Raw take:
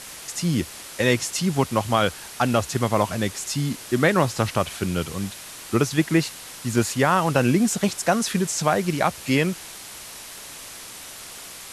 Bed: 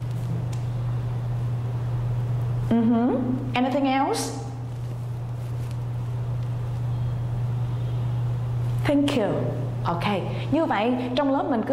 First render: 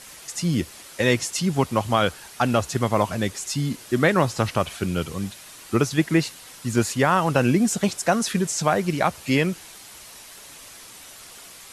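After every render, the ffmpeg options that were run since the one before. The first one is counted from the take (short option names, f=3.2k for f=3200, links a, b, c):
-af "afftdn=nr=6:nf=-40"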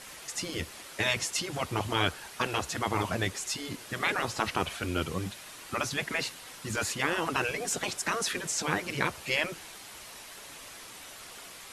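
-af "bass=f=250:g=-3,treble=f=4k:g=-5,afftfilt=real='re*lt(hypot(re,im),0.282)':imag='im*lt(hypot(re,im),0.282)':win_size=1024:overlap=0.75"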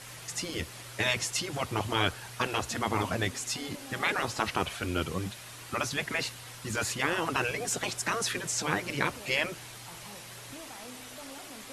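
-filter_complex "[1:a]volume=-25.5dB[a];[0:a][a]amix=inputs=2:normalize=0"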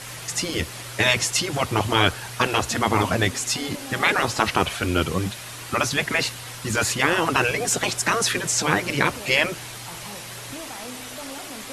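-af "volume=9dB,alimiter=limit=-3dB:level=0:latency=1"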